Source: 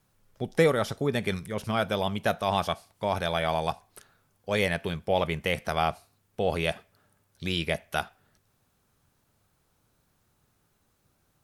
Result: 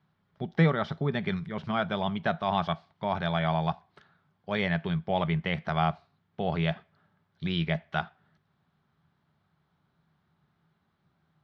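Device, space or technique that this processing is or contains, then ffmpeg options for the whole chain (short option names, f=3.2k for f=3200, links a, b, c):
guitar cabinet: -af "highpass=87,equalizer=f=110:t=q:w=4:g=-6,equalizer=f=160:t=q:w=4:g=9,equalizer=f=290:t=q:w=4:g=-5,equalizer=f=500:t=q:w=4:g=-10,equalizer=f=2.6k:t=q:w=4:g=-7,lowpass=f=3.6k:w=0.5412,lowpass=f=3.6k:w=1.3066"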